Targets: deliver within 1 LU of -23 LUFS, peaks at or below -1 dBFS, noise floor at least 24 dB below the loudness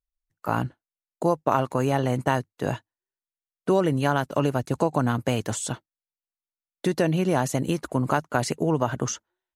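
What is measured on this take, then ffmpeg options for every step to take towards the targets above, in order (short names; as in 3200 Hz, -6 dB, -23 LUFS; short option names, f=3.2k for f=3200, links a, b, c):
loudness -25.5 LUFS; peak -6.5 dBFS; loudness target -23.0 LUFS
-> -af "volume=2.5dB"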